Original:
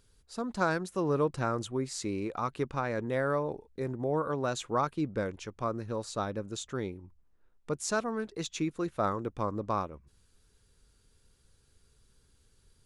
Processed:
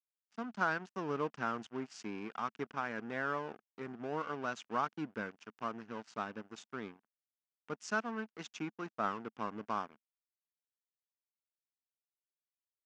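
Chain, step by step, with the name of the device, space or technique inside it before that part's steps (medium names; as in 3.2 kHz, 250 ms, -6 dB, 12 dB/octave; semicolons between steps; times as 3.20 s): blown loudspeaker (crossover distortion -42.5 dBFS; cabinet simulation 220–5900 Hz, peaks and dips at 220 Hz +5 dB, 350 Hz -5 dB, 540 Hz -9 dB, 1.5 kHz +5 dB, 2.8 kHz +4 dB, 4 kHz -8 dB); trim -3.5 dB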